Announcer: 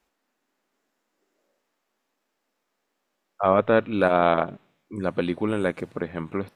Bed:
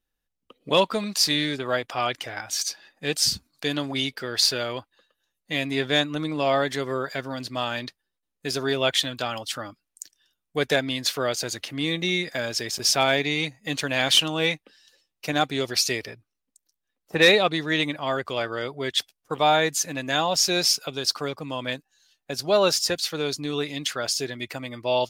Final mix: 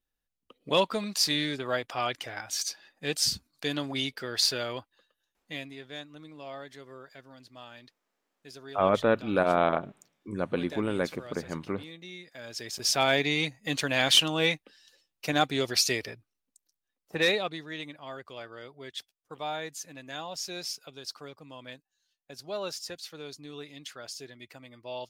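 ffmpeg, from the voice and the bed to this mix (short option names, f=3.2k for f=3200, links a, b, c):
-filter_complex "[0:a]adelay=5350,volume=-4.5dB[a];[1:a]volume=13dB,afade=t=out:st=5.2:d=0.56:silence=0.177828,afade=t=in:st=12.33:d=0.87:silence=0.133352,afade=t=out:st=16.32:d=1.38:silence=0.223872[b];[a][b]amix=inputs=2:normalize=0"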